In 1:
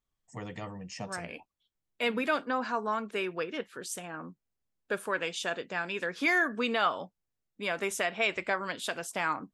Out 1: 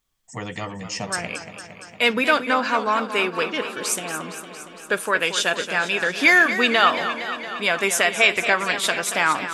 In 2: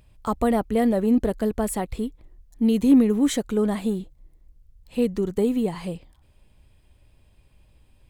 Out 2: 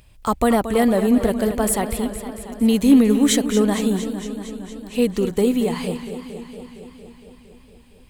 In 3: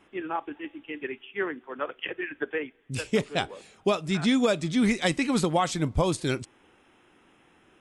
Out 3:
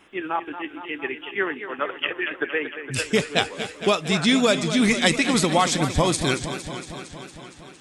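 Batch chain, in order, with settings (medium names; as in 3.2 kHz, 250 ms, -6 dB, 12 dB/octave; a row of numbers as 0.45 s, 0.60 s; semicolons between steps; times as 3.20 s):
tilt shelf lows -3.5 dB, about 1.3 kHz; modulated delay 230 ms, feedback 72%, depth 99 cents, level -11 dB; peak normalisation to -3 dBFS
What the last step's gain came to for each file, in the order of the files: +11.0 dB, +6.5 dB, +6.0 dB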